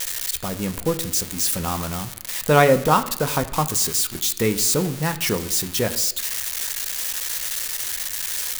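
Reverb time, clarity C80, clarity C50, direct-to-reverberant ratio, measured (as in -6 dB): 0.85 s, 16.0 dB, 14.0 dB, 8.0 dB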